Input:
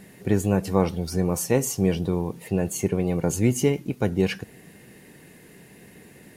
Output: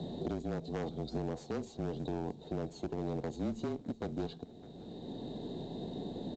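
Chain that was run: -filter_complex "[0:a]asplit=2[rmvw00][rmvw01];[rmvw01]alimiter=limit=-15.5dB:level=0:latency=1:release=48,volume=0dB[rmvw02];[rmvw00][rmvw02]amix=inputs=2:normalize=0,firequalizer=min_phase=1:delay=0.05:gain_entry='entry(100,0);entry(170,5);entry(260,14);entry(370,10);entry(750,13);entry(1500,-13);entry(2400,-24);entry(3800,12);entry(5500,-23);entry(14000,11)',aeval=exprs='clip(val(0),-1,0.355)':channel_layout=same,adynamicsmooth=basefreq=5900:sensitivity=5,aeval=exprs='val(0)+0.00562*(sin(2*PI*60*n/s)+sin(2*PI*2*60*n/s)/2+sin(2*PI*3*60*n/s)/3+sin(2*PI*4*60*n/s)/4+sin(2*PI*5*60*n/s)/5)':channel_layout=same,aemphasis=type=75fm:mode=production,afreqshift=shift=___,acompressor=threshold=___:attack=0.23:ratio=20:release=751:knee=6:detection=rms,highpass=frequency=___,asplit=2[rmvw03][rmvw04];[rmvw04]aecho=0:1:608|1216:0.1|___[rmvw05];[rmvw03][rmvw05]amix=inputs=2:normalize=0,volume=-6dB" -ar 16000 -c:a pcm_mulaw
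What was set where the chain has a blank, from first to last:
-27, -22dB, 42, 0.031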